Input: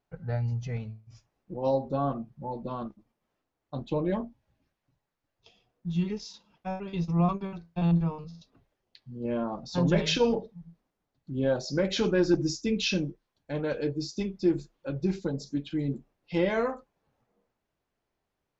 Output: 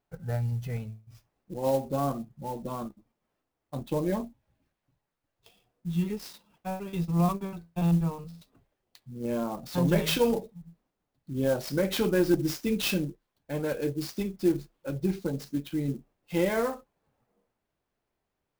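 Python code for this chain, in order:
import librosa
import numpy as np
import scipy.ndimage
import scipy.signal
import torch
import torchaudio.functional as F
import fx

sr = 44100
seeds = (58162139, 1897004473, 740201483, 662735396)

y = fx.clock_jitter(x, sr, seeds[0], jitter_ms=0.028)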